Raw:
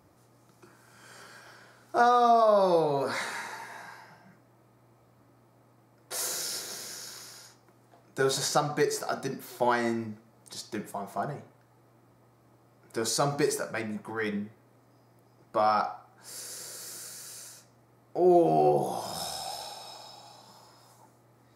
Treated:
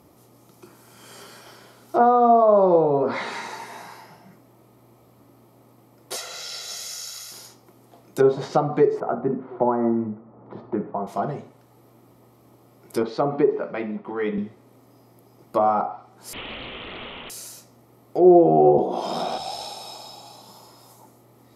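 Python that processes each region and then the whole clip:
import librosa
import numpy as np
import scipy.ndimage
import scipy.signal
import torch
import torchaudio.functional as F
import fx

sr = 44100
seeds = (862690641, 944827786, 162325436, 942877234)

y = fx.chain(x, sr, fx.peak_eq(hz=250.0, db=-13.5, octaves=3.0),
    fx.comb(ms=1.5, depth=0.61), at=(6.16, 7.32))
y = fx.chain(y, sr, fx.lowpass(hz=1400.0, slope=24),
    fx.band_squash(depth_pct=40), at=(9.0, 11.07))
y = fx.chain(y, sr, fx.highpass(hz=190.0, slope=12),
    fx.air_absorb(metres=370.0), at=(13.03, 14.38))
y = fx.chain(y, sr, fx.brickwall_bandpass(low_hz=310.0, high_hz=11000.0),
    fx.resample_bad(factor=6, down='none', up='filtered'),
    fx.doppler_dist(depth_ms=0.31), at=(16.33, 17.3))
y = fx.chain(y, sr, fx.low_shelf_res(hz=160.0, db=-13.5, q=1.5),
    fx.notch(hz=790.0, q=23.0),
    fx.band_squash(depth_pct=100), at=(18.78, 19.38))
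y = fx.env_lowpass_down(y, sr, base_hz=1100.0, full_db=-24.0)
y = fx.graphic_eq_31(y, sr, hz=(100, 250, 400, 1600, 3150, 12500), db=(-4, 5, 4, -9, 4, 10))
y = y * librosa.db_to_amplitude(6.5)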